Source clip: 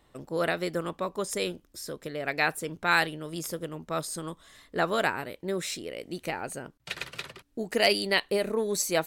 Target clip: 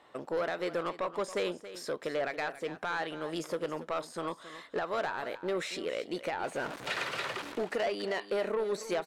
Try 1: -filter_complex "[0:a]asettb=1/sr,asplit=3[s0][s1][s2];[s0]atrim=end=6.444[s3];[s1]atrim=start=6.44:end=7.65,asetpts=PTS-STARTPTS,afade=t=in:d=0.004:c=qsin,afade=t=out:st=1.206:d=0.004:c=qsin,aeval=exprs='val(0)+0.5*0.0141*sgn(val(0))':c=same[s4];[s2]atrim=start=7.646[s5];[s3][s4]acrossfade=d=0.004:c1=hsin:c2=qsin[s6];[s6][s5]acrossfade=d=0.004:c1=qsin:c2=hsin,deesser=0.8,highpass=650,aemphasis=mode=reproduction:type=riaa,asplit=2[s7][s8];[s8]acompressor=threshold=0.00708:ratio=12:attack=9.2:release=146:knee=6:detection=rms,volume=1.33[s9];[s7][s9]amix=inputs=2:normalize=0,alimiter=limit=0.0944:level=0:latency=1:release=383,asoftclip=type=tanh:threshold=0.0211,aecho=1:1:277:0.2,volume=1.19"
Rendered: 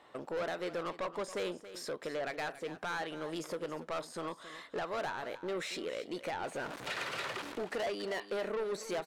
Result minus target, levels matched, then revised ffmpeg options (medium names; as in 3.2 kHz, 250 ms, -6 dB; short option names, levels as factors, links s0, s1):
compression: peak gain reduction +10 dB; saturation: distortion +6 dB
-filter_complex "[0:a]asettb=1/sr,asplit=3[s0][s1][s2];[s0]atrim=end=6.444[s3];[s1]atrim=start=6.44:end=7.65,asetpts=PTS-STARTPTS,afade=t=in:d=0.004:c=qsin,afade=t=out:st=1.206:d=0.004:c=qsin,aeval=exprs='val(0)+0.5*0.0141*sgn(val(0))':c=same[s4];[s2]atrim=start=7.646[s5];[s3][s4]acrossfade=d=0.004:c1=hsin:c2=qsin[s6];[s6][s5]acrossfade=d=0.004:c1=qsin:c2=hsin,deesser=0.8,highpass=650,aemphasis=mode=reproduction:type=riaa,asplit=2[s7][s8];[s8]acompressor=threshold=0.0251:ratio=12:attack=9.2:release=146:knee=6:detection=rms,volume=1.33[s9];[s7][s9]amix=inputs=2:normalize=0,alimiter=limit=0.0944:level=0:latency=1:release=383,asoftclip=type=tanh:threshold=0.0447,aecho=1:1:277:0.2,volume=1.19"